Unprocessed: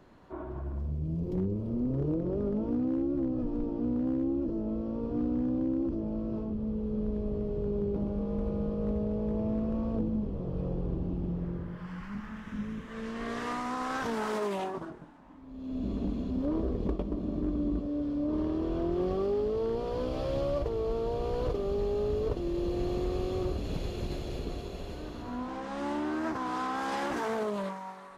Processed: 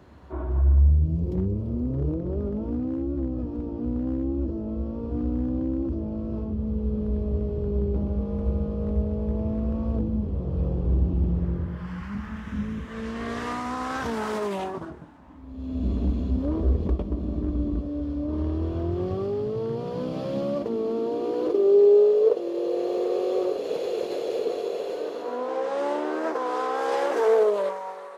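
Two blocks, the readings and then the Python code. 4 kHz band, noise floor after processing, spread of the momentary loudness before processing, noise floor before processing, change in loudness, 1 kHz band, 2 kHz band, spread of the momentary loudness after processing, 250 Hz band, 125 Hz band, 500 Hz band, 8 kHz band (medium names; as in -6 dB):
+3.0 dB, -37 dBFS, 9 LU, -43 dBFS, +6.5 dB, +4.5 dB, +3.5 dB, 10 LU, +2.5 dB, +8.5 dB, +8.5 dB, no reading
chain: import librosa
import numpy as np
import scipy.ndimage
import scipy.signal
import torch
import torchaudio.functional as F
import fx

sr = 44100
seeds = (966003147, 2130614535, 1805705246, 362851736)

y = fx.rider(x, sr, range_db=3, speed_s=2.0)
y = fx.filter_sweep_highpass(y, sr, from_hz=67.0, to_hz=470.0, start_s=18.3, end_s=22.15, q=6.0)
y = y * 10.0 ** (2.0 / 20.0)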